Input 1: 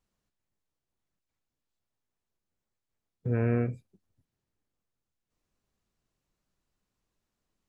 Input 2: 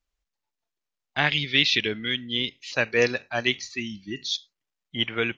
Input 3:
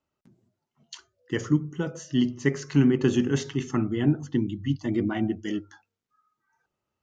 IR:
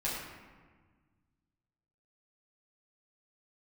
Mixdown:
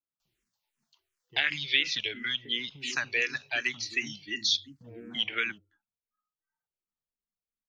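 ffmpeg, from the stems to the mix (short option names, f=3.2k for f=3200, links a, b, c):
-filter_complex "[0:a]aecho=1:1:4.4:0.52,adelay=1550,volume=-19dB[a];[1:a]acrossover=split=180|1600[b][c][d];[b]acompressor=threshold=-47dB:ratio=4[e];[c]acompressor=threshold=-38dB:ratio=4[f];[d]acompressor=threshold=-33dB:ratio=4[g];[e][f][g]amix=inputs=3:normalize=0,tiltshelf=f=700:g=-8,adelay=200,volume=1.5dB[h];[2:a]lowpass=3.8k,alimiter=limit=-17.5dB:level=0:latency=1:release=315,volume=-19.5dB[i];[a][h][i]amix=inputs=3:normalize=0,asplit=2[j][k];[k]afreqshift=-2.8[l];[j][l]amix=inputs=2:normalize=1"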